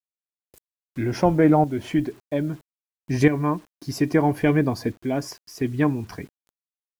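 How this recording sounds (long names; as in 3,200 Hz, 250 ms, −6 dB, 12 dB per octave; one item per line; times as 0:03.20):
tremolo saw up 0.61 Hz, depth 60%
a quantiser's noise floor 10 bits, dither none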